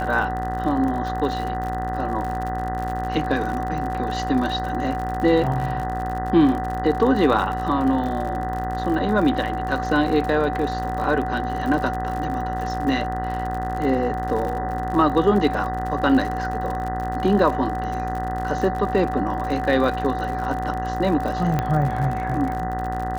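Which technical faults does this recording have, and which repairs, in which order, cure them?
mains buzz 60 Hz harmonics 33 −29 dBFS
surface crackle 60 per second −28 dBFS
whistle 750 Hz −26 dBFS
0:21.59: click −9 dBFS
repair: click removal
hum removal 60 Hz, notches 33
notch filter 750 Hz, Q 30

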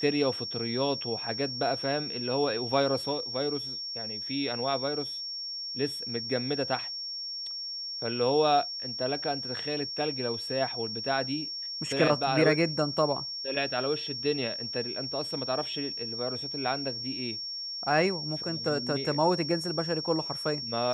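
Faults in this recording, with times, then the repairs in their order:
whistle 5,500 Hz −34 dBFS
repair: notch filter 5,500 Hz, Q 30

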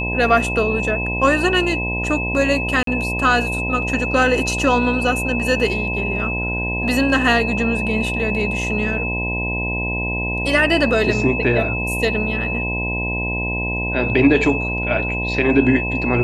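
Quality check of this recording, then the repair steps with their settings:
mains buzz 60 Hz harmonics 17 −25 dBFS
whistle 2,600 Hz −23 dBFS
0:02.83–0:02.87: drop-out 43 ms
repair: hum removal 60 Hz, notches 17
notch filter 2,600 Hz, Q 30
repair the gap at 0:02.83, 43 ms

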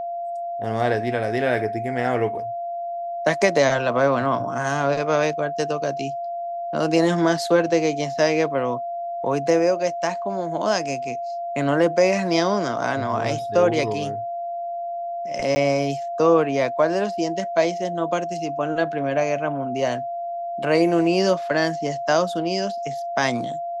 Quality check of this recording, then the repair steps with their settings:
whistle 690 Hz −26 dBFS
0:15.55–0:15.56: drop-out 10 ms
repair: notch filter 690 Hz, Q 30
repair the gap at 0:15.55, 10 ms

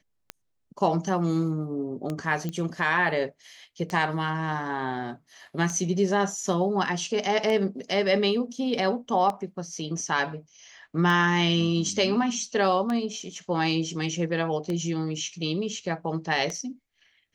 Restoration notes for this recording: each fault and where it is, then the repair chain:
scratch tick 33 1/3 rpm −17 dBFS
0:02.49: click −19 dBFS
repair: click removal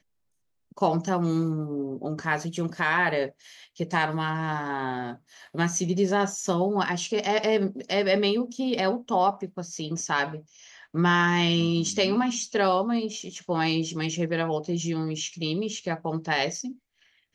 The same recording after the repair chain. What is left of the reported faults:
none of them is left

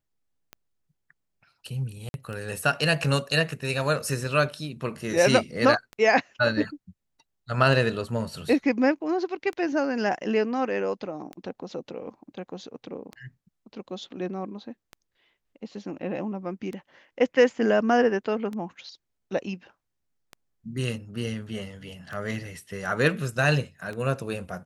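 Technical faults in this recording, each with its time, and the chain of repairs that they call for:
scratch tick 33 1/3 rpm −23 dBFS
0:02.09–0:02.14: drop-out 51 ms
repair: click removal
repair the gap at 0:02.09, 51 ms

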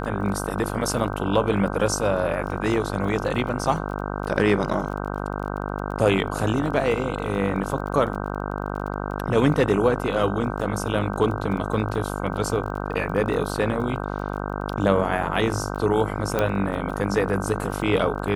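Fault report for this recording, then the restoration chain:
mains buzz 50 Hz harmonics 31 −29 dBFS
surface crackle 22 per second −33 dBFS
0:16.39: click −9 dBFS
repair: click removal
hum removal 50 Hz, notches 31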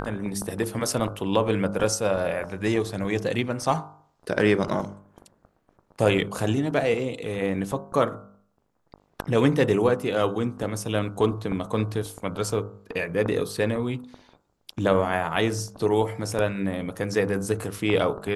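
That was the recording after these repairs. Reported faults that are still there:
0:16.39: click

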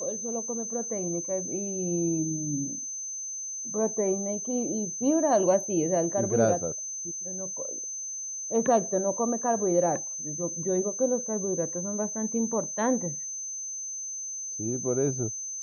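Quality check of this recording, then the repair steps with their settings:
whistle 6,200 Hz −33 dBFS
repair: notch filter 6,200 Hz, Q 30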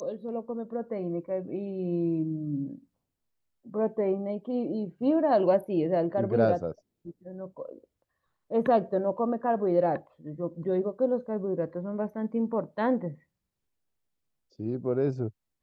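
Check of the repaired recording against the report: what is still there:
none of them is left

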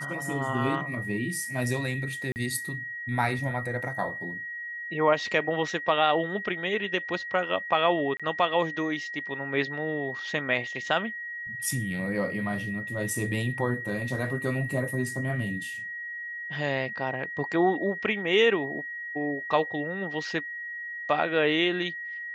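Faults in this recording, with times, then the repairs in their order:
whistle 1,900 Hz −34 dBFS
0:02.32–0:02.36: drop-out 39 ms
0:08.17–0:08.20: drop-out 26 ms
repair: notch filter 1,900 Hz, Q 30
repair the gap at 0:02.32, 39 ms
repair the gap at 0:08.17, 26 ms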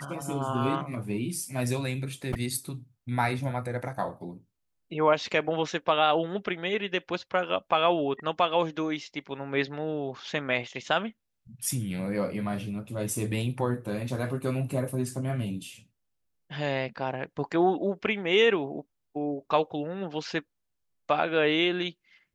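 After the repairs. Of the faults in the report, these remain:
none of them is left

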